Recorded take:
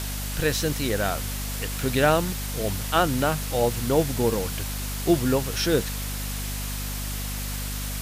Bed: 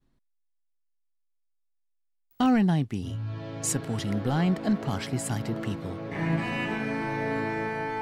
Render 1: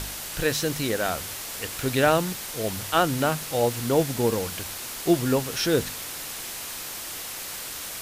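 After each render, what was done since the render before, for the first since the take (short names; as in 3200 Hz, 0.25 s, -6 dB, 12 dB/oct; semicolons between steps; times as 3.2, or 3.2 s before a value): de-hum 50 Hz, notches 5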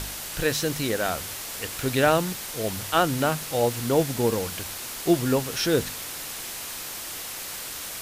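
nothing audible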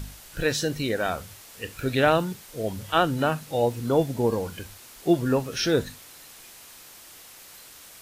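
noise print and reduce 12 dB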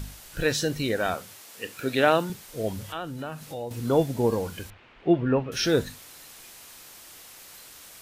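1.14–2.3 HPF 190 Hz; 2.88–3.71 compressor 2.5:1, threshold -36 dBFS; 4.7–5.52 Chebyshev low-pass 2700 Hz, order 3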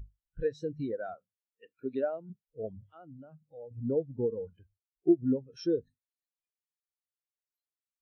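compressor 6:1, threshold -24 dBFS, peak gain reduction 9.5 dB; spectral expander 2.5:1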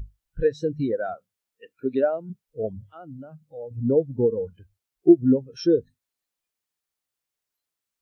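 gain +9.5 dB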